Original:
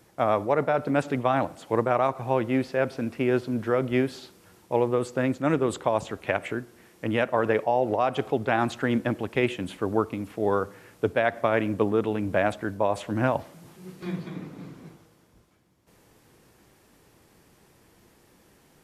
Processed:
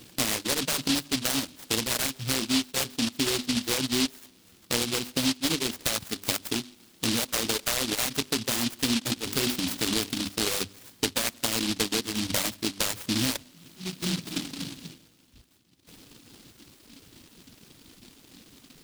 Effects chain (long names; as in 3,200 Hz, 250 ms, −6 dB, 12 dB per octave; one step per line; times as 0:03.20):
mains-hum notches 50/100/150/200/250/300/350/400 Hz
reverb reduction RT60 1.7 s
parametric band 260 Hz +10.5 dB 0.51 octaves
0:09.16–0:10.29: transient designer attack −1 dB, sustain +11 dB
downward compressor 4 to 1, threshold −34 dBFS, peak gain reduction 18.5 dB
short delay modulated by noise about 3,700 Hz, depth 0.42 ms
level +7.5 dB